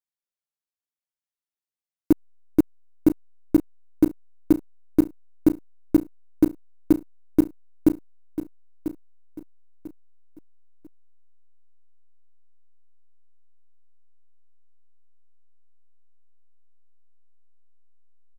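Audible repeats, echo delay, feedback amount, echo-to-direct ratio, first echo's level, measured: 3, 0.994 s, 32%, -11.5 dB, -12.0 dB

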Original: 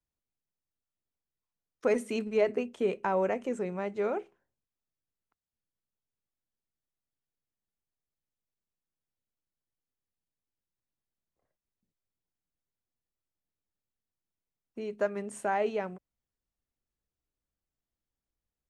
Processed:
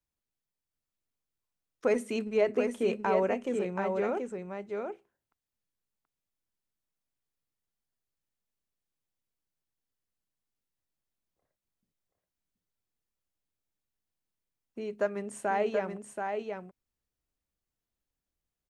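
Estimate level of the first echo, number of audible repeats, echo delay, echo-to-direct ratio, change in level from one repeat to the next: -5.0 dB, 1, 0.729 s, -5.0 dB, no steady repeat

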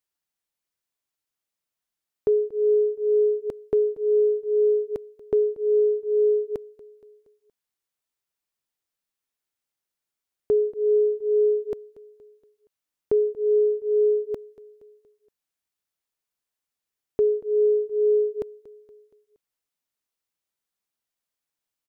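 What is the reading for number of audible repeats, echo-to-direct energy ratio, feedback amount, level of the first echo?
3, -18.5 dB, 52%, -20.0 dB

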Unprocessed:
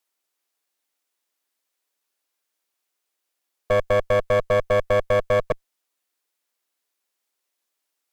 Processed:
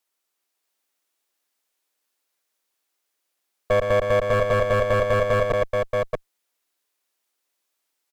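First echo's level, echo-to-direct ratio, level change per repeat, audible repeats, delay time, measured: -7.0 dB, -2.0 dB, no steady repeat, 2, 0.114 s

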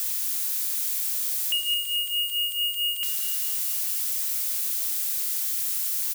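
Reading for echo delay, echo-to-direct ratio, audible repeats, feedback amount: 0.217 s, -8.0 dB, 6, 60%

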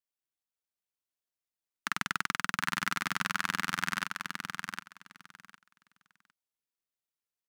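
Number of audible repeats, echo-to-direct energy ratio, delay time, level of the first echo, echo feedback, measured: 2, -5.5 dB, 0.757 s, -5.5 dB, 17%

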